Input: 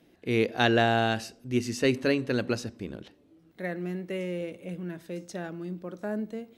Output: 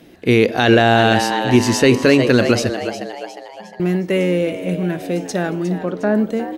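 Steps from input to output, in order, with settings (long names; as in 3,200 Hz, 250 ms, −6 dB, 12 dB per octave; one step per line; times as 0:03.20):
0:02.79–0:03.80: resonances in every octave G#, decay 0.44 s
0:05.74–0:06.15: low-pass filter 4,500 Hz 24 dB per octave
echo with shifted repeats 358 ms, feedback 47%, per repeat +98 Hz, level −12 dB
boost into a limiter +16.5 dB
level −1 dB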